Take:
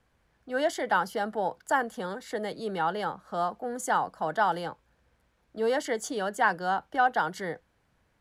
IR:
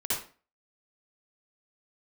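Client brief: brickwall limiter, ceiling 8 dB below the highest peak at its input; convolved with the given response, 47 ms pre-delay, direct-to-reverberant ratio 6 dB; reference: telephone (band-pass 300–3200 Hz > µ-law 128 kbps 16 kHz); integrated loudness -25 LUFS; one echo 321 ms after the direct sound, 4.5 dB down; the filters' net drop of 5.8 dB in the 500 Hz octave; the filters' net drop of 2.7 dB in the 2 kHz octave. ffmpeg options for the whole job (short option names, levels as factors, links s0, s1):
-filter_complex "[0:a]equalizer=f=500:t=o:g=-6.5,equalizer=f=2000:t=o:g=-3,alimiter=limit=0.0891:level=0:latency=1,aecho=1:1:321:0.596,asplit=2[s0][s1];[1:a]atrim=start_sample=2205,adelay=47[s2];[s1][s2]afir=irnorm=-1:irlink=0,volume=0.224[s3];[s0][s3]amix=inputs=2:normalize=0,highpass=300,lowpass=3200,volume=2.51" -ar 16000 -c:a pcm_mulaw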